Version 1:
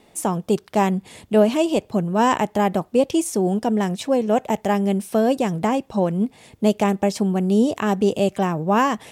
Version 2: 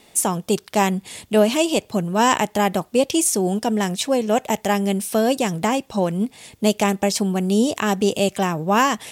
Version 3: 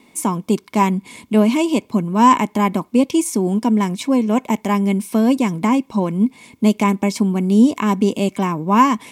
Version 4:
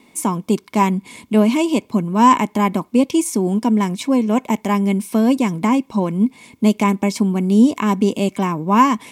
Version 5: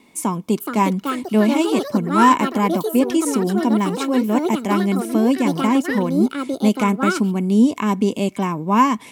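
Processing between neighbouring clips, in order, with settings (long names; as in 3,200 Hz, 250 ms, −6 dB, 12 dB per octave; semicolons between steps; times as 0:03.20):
high-shelf EQ 2,000 Hz +11 dB; level −1 dB
hollow resonant body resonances 250/1,000/2,200 Hz, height 15 dB, ringing for 25 ms; level −6 dB
no processing that can be heard
delay with pitch and tempo change per echo 486 ms, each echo +5 semitones, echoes 2, each echo −6 dB; level −2 dB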